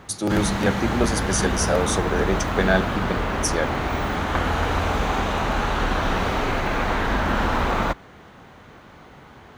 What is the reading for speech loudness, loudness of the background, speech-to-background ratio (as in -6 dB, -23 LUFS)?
-24.5 LUFS, -24.0 LUFS, -0.5 dB